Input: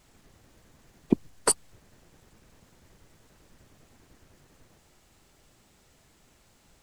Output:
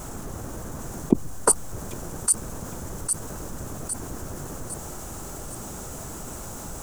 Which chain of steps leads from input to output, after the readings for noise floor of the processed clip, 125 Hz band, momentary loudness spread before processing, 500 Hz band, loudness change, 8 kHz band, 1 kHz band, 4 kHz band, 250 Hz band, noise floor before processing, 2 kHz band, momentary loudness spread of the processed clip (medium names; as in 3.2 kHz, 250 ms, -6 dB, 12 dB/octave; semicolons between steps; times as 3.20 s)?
-37 dBFS, +11.0 dB, 3 LU, +6.0 dB, -1.5 dB, +9.0 dB, +7.0 dB, 0.0 dB, +4.5 dB, -63 dBFS, +4.5 dB, 14 LU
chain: high-order bell 3 kHz -12.5 dB; on a send: feedback echo behind a high-pass 806 ms, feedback 31%, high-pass 3.1 kHz, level -3 dB; on the sum: level flattener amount 50%; trim +3.5 dB